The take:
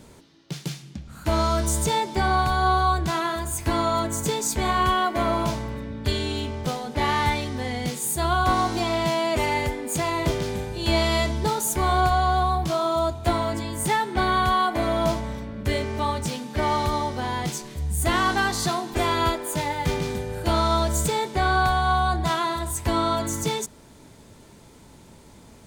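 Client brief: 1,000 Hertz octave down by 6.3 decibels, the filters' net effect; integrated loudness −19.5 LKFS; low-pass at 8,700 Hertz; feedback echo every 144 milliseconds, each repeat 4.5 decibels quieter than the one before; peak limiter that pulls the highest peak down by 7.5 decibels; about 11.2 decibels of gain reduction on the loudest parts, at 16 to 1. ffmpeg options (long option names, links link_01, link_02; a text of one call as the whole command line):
ffmpeg -i in.wav -af "lowpass=8700,equalizer=frequency=1000:width_type=o:gain=-8.5,acompressor=threshold=-30dB:ratio=16,alimiter=level_in=3dB:limit=-24dB:level=0:latency=1,volume=-3dB,aecho=1:1:144|288|432|576|720|864|1008|1152|1296:0.596|0.357|0.214|0.129|0.0772|0.0463|0.0278|0.0167|0.01,volume=15.5dB" out.wav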